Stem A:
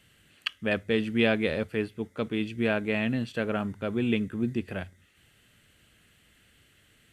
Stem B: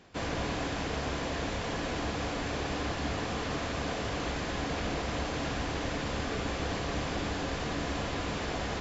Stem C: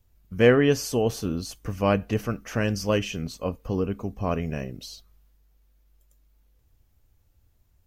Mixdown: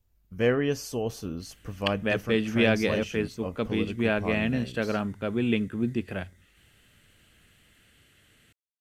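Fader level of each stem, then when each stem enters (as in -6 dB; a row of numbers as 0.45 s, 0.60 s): +1.0 dB, mute, -6.5 dB; 1.40 s, mute, 0.00 s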